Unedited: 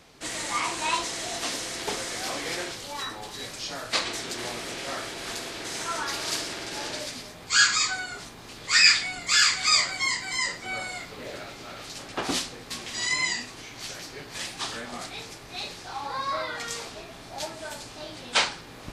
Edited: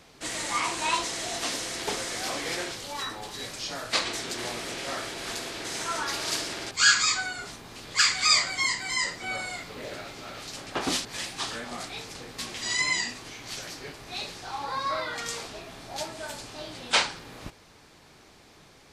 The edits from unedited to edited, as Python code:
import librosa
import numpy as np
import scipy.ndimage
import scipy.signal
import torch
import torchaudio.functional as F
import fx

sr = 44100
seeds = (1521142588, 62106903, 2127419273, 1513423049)

y = fx.edit(x, sr, fx.cut(start_s=6.71, length_s=0.73),
    fx.cut(start_s=8.72, length_s=0.69),
    fx.move(start_s=14.26, length_s=1.1, to_s=12.47), tone=tone)